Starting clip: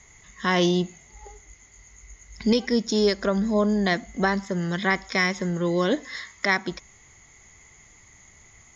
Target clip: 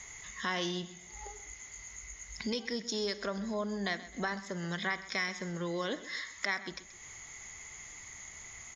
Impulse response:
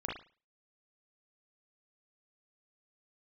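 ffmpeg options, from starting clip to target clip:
-filter_complex "[0:a]tiltshelf=f=680:g=-4.5,acompressor=threshold=0.00501:ratio=2,aecho=1:1:130|260|390:0.158|0.0539|0.0183,asplit=2[s0][s1];[1:a]atrim=start_sample=2205[s2];[s1][s2]afir=irnorm=-1:irlink=0,volume=0.15[s3];[s0][s3]amix=inputs=2:normalize=0,volume=1.12"

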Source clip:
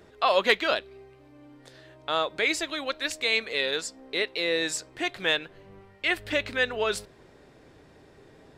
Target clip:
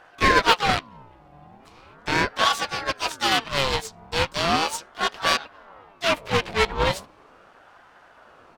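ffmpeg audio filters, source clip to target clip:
-filter_complex "[0:a]aeval=exprs='0.376*(cos(1*acos(clip(val(0)/0.376,-1,1)))-cos(1*PI/2))+0.0473*(cos(8*acos(clip(val(0)/0.376,-1,1)))-cos(8*PI/2))':c=same,asplit=4[s0][s1][s2][s3];[s1]asetrate=37084,aresample=44100,atempo=1.18921,volume=0.447[s4];[s2]asetrate=55563,aresample=44100,atempo=0.793701,volume=0.501[s5];[s3]asetrate=88200,aresample=44100,atempo=0.5,volume=0.141[s6];[s0][s4][s5][s6]amix=inputs=4:normalize=0,asplit=2[s7][s8];[s8]adynamicsmooth=sensitivity=5.5:basefreq=3900,volume=0.708[s9];[s7][s9]amix=inputs=2:normalize=0,aeval=exprs='val(0)*sin(2*PI*790*n/s+790*0.45/0.38*sin(2*PI*0.38*n/s))':c=same,volume=0.891"

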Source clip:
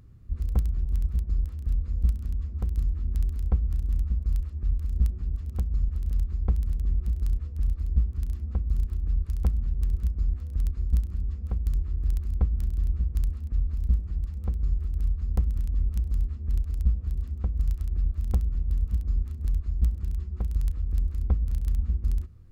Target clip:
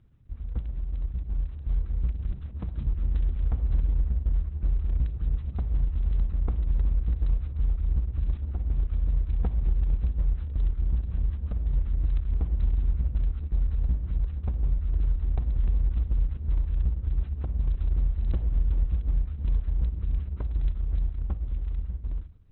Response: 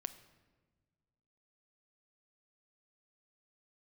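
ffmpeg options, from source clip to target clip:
-filter_complex "[0:a]asettb=1/sr,asplit=3[s0][s1][s2];[s0]atrim=end=2.324[s3];[s1]atrim=start=2.32:end=2.87,asetpts=PTS-STARTPTS,afade=t=in:d=0.004:c=qsin,afade=t=out:st=0.546:d=0.004:c=qsin,highpass=83[s4];[s2]atrim=start=2.866[s5];[s3][s4]acrossfade=d=0.004:c1=hsin:c2=qsin[s6];[s6][s5]acrossfade=d=0.004:c1=qsin:c2=hsin,dynaudnorm=f=170:g=21:m=3.55,alimiter=limit=0.282:level=0:latency=1:release=144,asettb=1/sr,asplit=3[s7][s8][s9];[s7]atrim=end=3.914[s10];[s8]atrim=start=3.91:end=4.51,asetpts=PTS-STARTPTS,afade=t=in:d=0.004:c=qsin,afade=t=out:st=0.596:d=0.004:c=qsin,adynamicsmooth=sensitivity=5:basefreq=880[s11];[s9]atrim=start=4.506[s12];[s10][s11]acrossfade=d=0.004:c1=hsin:c2=qsin[s13];[s13][s12]acrossfade=d=0.004:c1=qsin:c2=hsin[s14];[1:a]atrim=start_sample=2205,afade=t=out:st=0.22:d=0.01,atrim=end_sample=10143[s15];[s14][s15]afir=irnorm=-1:irlink=0,volume=0.631" -ar 48000 -c:a libopus -b:a 6k

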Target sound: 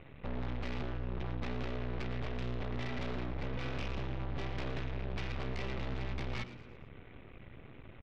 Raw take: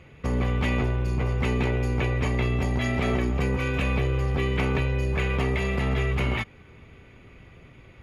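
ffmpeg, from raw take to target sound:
-filter_complex "[0:a]aemphasis=mode=reproduction:type=75kf,aresample=8000,aeval=exprs='max(val(0),0)':c=same,aresample=44100,aeval=exprs='(tanh(35.5*val(0)+0.3)-tanh(0.3))/35.5':c=same,asplit=5[s0][s1][s2][s3][s4];[s1]adelay=113,afreqshift=120,volume=0.188[s5];[s2]adelay=226,afreqshift=240,volume=0.0813[s6];[s3]adelay=339,afreqshift=360,volume=0.0347[s7];[s4]adelay=452,afreqshift=480,volume=0.015[s8];[s0][s5][s6][s7][s8]amix=inputs=5:normalize=0,volume=1.33"

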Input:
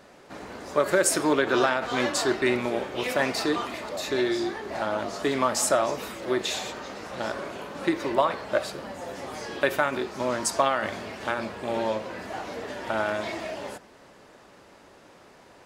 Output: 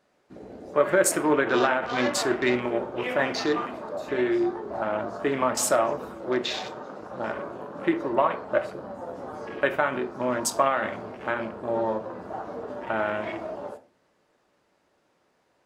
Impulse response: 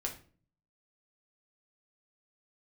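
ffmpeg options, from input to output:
-filter_complex "[0:a]afwtdn=0.0178,lowshelf=f=68:g=-6,asplit=2[s0][s1];[1:a]atrim=start_sample=2205[s2];[s1][s2]afir=irnorm=-1:irlink=0,volume=0.708[s3];[s0][s3]amix=inputs=2:normalize=0,volume=0.631"

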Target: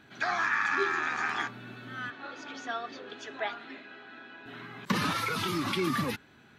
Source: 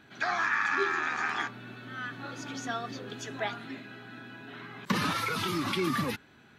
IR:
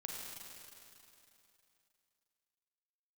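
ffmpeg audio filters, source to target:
-filter_complex "[0:a]asettb=1/sr,asplit=3[s0][s1][s2];[s0]atrim=end=2.104[s3];[s1]atrim=start=2.1:end=4.46,asetpts=PTS-STARTPTS,afade=t=in:d=0.004:c=qsin,afade=t=out:st=2.356:d=0.004:c=qsin,highpass=360,lowpass=4300[s4];[s2]atrim=start=4.456[s5];[s3][s4]acrossfade=d=0.004:c1=hsin:c2=qsin[s6];[s6][s5]acrossfade=d=0.004:c1=qsin:c2=hsin"

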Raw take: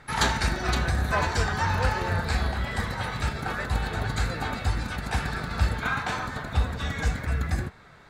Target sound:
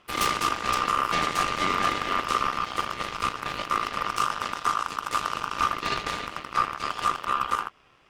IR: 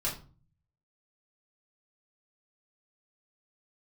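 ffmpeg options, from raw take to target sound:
-filter_complex "[0:a]asettb=1/sr,asplit=3[s0][s1][s2];[s0]atrim=end=4.184[s3];[s1]atrim=start=4.18:end=5.58,asetpts=PTS-STARTPTS,afade=t=in:d=0.004:c=qsin,afade=t=out:st=1.396:d=0.004:c=qsin,equalizer=f=160:t=o:w=0.67:g=6,equalizer=f=1000:t=o:w=0.67:g=-7,equalizer=f=6300:t=o:w=0.67:g=5[s4];[s2]atrim=start=5.576[s5];[s3][s4]acrossfade=d=0.004:c1=hsin:c2=qsin[s6];[s6][s5]acrossfade=d=0.004:c1=qsin:c2=hsin,aeval=exprs='0.335*(cos(1*acos(clip(val(0)/0.335,-1,1)))-cos(1*PI/2))+0.15*(cos(8*acos(clip(val(0)/0.335,-1,1)))-cos(8*PI/2))':c=same,aeval=exprs='val(0)*sin(2*PI*1200*n/s)':c=same,volume=0.531"

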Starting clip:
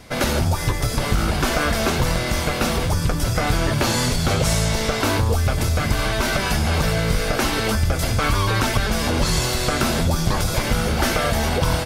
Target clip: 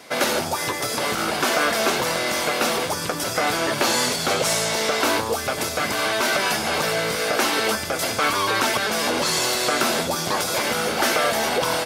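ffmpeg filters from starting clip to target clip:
-filter_complex "[0:a]highpass=340,asplit=2[s0][s1];[s1]asoftclip=type=tanh:threshold=0.0891,volume=0.355[s2];[s0][s2]amix=inputs=2:normalize=0"

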